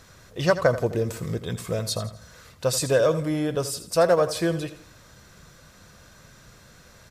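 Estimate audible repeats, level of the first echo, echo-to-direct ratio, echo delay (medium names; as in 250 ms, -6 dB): 3, -13.0 dB, -12.0 dB, 83 ms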